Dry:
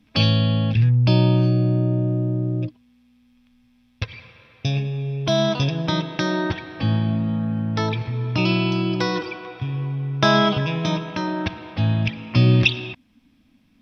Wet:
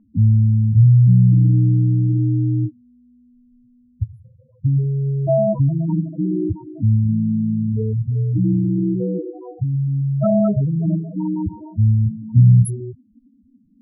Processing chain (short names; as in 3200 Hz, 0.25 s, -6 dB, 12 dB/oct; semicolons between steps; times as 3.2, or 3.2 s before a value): FFT order left unsorted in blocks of 16 samples; loudest bins only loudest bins 4; low-pass opened by the level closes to 1200 Hz; gain +6 dB